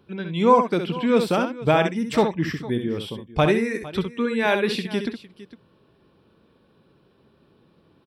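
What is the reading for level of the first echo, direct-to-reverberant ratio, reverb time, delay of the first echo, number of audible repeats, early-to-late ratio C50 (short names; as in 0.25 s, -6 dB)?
-7.5 dB, none, none, 66 ms, 2, none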